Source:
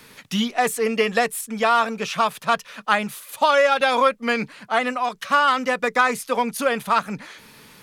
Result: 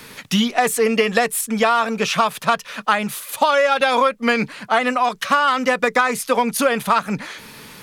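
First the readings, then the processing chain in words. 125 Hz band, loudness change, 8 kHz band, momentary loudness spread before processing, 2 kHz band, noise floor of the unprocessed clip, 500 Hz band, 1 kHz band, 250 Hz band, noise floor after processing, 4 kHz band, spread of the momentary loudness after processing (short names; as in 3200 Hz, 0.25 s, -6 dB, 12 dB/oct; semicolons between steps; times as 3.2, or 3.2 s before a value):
+6.0 dB, +2.5 dB, +6.0 dB, 7 LU, +2.0 dB, -49 dBFS, +2.5 dB, +2.0 dB, +5.0 dB, -42 dBFS, +3.5 dB, 6 LU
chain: compressor 4:1, threshold -21 dBFS, peak gain reduction 8 dB; gain +7.5 dB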